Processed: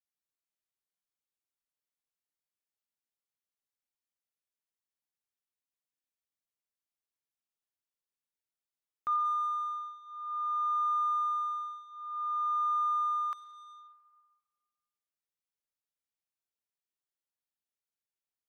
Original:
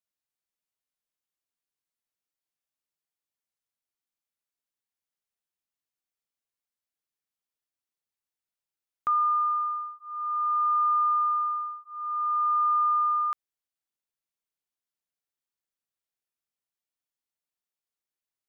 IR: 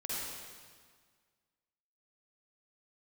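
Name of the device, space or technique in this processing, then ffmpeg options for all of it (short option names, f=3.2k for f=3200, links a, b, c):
saturated reverb return: -filter_complex "[0:a]asplit=2[a][b];[1:a]atrim=start_sample=2205[c];[b][c]afir=irnorm=-1:irlink=0,asoftclip=type=tanh:threshold=-33.5dB,volume=-9.5dB[d];[a][d]amix=inputs=2:normalize=0,adynamicequalizer=threshold=0.0224:dfrequency=1100:dqfactor=2.4:tfrequency=1100:tqfactor=2.4:attack=5:release=100:ratio=0.375:range=1.5:mode=boostabove:tftype=bell,volume=-8dB"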